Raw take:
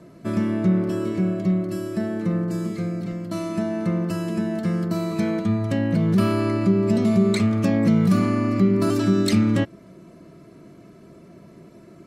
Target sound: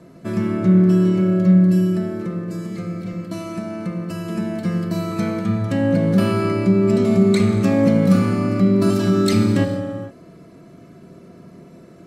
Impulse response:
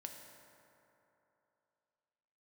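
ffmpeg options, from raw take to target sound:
-filter_complex "[0:a]asettb=1/sr,asplit=3[a][b][c];[a]atrim=end=1.814[d];[b]atrim=start=1.81:end=4.29,asetpts=PTS-STARTPTS,afade=t=in:d=0.004:c=qsin,afade=t=out:st=2.476:d=0.004:c=qsin,acompressor=threshold=-26dB:ratio=3[e];[c]atrim=start=4.286[f];[d][e]acrossfade=d=0.004:c1=hsin:c2=qsin[g];[g][f]acrossfade=d=0.004:c1=qsin:c2=hsin[h];[1:a]atrim=start_sample=2205,afade=t=out:st=0.44:d=0.01,atrim=end_sample=19845,asetrate=36603,aresample=44100[i];[h][i]afir=irnorm=-1:irlink=0,volume=6dB"

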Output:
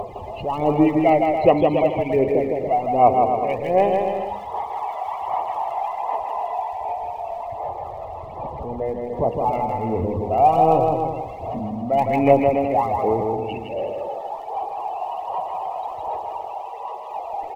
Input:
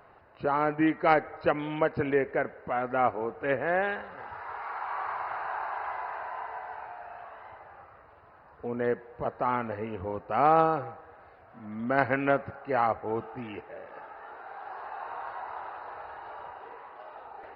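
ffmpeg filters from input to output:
-filter_complex "[0:a]aeval=exprs='val(0)+0.5*0.0251*sgn(val(0))':c=same,asettb=1/sr,asplit=3[a][b][c];[a]atrim=end=7.404[d];[b]atrim=start=7.4:end=9.09,asetpts=PTS-STARTPTS,afade=t=in:d=0.004:c=qsin,afade=t=out:st=1.686:d=0.004:c=qsin,acrossover=split=4000[e][f];[f]acompressor=threshold=-54dB:ratio=4:attack=1:release=60[g];[e][g]amix=inputs=2:normalize=0[h];[c]atrim=start=9.086[i];[d][h]acrossfade=d=0.004:c1=hsin:c2=qsin[j];[j][i]acrossfade=d=0.004:c1=qsin:c2=hsin,asettb=1/sr,asplit=3[k][l][m];[k]atrim=end=16.374[n];[l]atrim=start=16.37:end=17.14,asetpts=PTS-STARTPTS,afade=t=in:d=0.004:c=qsin,afade=t=out:st=0.766:d=0.004:c=qsin,highpass=f=550:p=1[o];[m]atrim=start=17.136[p];[n][o]acrossfade=d=0.004:c1=hsin:c2=qsin[q];[q][p]acrossfade=d=0.004:c1=qsin:c2=hsin,afftdn=nr=28:nf=-36,equalizer=f=2.1k:w=0.38:g=8,acompressor=mode=upward:threshold=-30dB:ratio=2.5,aphaser=in_gain=1:out_gain=1:delay=1.5:decay=0.63:speed=1.3:type=sinusoidal,asuperstop=centerf=1500:order=4:qfactor=0.85,aecho=1:1:160|280|370|437.5|488.1:0.631|0.398|0.251|0.158|0.1"

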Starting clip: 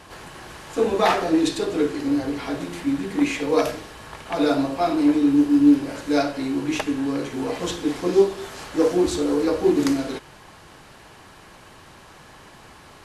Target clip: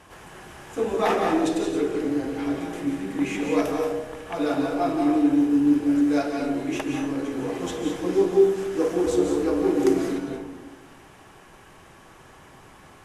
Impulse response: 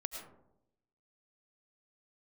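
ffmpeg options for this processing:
-filter_complex "[0:a]equalizer=f=4.3k:t=o:w=0.42:g=-8[a];[1:a]atrim=start_sample=2205,asetrate=26460,aresample=44100[b];[a][b]afir=irnorm=-1:irlink=0,volume=-5dB"

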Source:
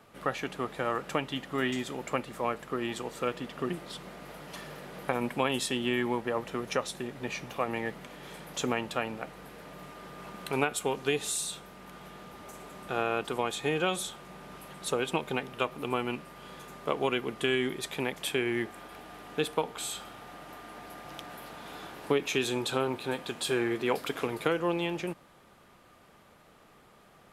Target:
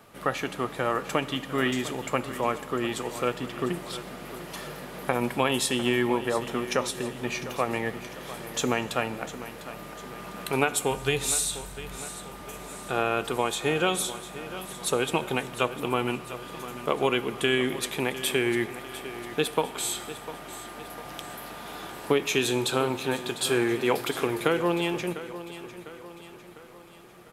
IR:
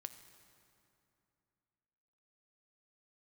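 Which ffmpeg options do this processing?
-filter_complex "[0:a]asplit=3[a][b][c];[a]afade=t=out:st=10.9:d=0.02[d];[b]asubboost=boost=6:cutoff=100,afade=t=in:st=10.9:d=0.02,afade=t=out:st=11.96:d=0.02[e];[c]afade=t=in:st=11.96:d=0.02[f];[d][e][f]amix=inputs=3:normalize=0,aecho=1:1:701|1402|2103|2804|3505:0.2|0.0998|0.0499|0.0249|0.0125,asplit=2[g][h];[1:a]atrim=start_sample=2205,afade=t=out:st=0.4:d=0.01,atrim=end_sample=18081,highshelf=f=7.3k:g=9.5[i];[h][i]afir=irnorm=-1:irlink=0,volume=6.5dB[j];[g][j]amix=inputs=2:normalize=0,volume=-3dB"

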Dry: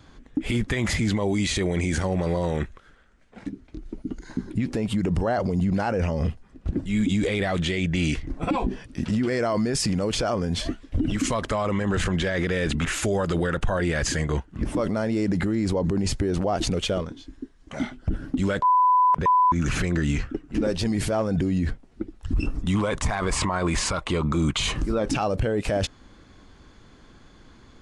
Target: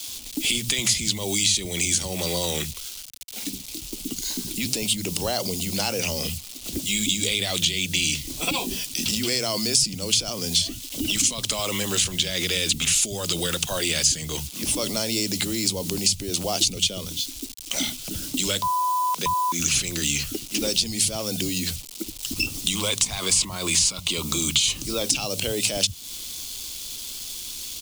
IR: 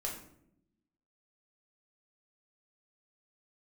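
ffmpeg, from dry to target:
-filter_complex "[0:a]alimiter=limit=-17.5dB:level=0:latency=1:release=330,acrossover=split=170[a][b];[a]adelay=70[c];[c][b]amix=inputs=2:normalize=0,acrusher=bits=8:mix=0:aa=0.000001,aexciter=amount=12.2:drive=5.8:freq=2.6k,acrossover=split=100|240[d][e][f];[d]acompressor=threshold=-43dB:ratio=4[g];[e]acompressor=threshold=-34dB:ratio=4[h];[f]acompressor=threshold=-21dB:ratio=4[i];[g][h][i]amix=inputs=3:normalize=0"

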